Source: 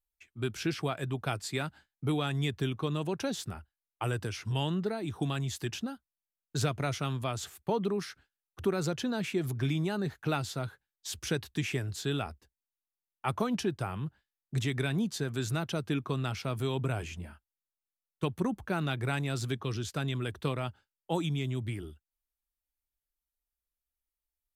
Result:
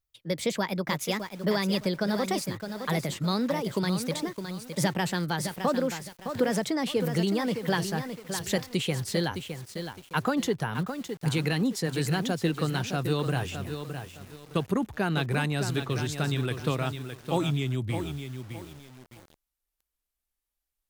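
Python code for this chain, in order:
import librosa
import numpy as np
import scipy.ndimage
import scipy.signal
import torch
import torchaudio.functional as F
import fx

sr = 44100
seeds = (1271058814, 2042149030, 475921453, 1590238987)

y = fx.speed_glide(x, sr, from_pct=143, to_pct=92)
y = fx.echo_crushed(y, sr, ms=613, feedback_pct=35, bits=8, wet_db=-7.5)
y = F.gain(torch.from_numpy(y), 4.0).numpy()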